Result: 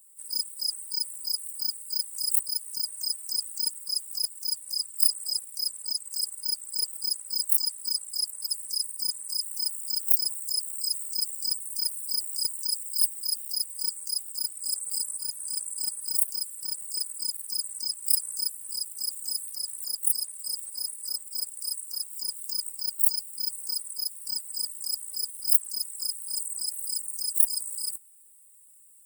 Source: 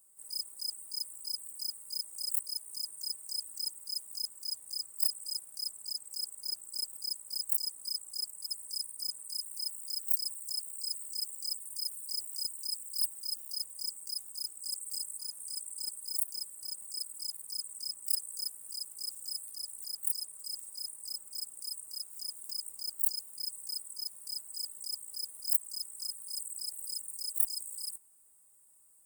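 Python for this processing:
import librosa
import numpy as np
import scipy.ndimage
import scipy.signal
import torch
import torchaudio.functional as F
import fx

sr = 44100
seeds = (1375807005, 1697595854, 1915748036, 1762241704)

y = fx.spec_quant(x, sr, step_db=30)
y = y * 10.0 ** (8.5 / 20.0)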